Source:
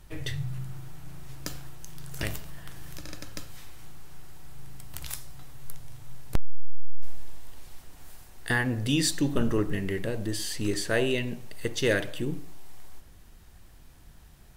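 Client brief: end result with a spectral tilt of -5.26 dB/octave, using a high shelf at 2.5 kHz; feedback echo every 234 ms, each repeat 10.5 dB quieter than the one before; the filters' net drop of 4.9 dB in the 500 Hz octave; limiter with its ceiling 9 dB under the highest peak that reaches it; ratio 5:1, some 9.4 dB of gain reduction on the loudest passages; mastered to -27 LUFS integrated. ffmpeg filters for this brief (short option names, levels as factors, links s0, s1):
-af "equalizer=f=500:t=o:g=-6,highshelf=f=2500:g=-8.5,acompressor=threshold=0.0562:ratio=5,alimiter=level_in=1.12:limit=0.0631:level=0:latency=1,volume=0.891,aecho=1:1:234|468|702:0.299|0.0896|0.0269,volume=3.98"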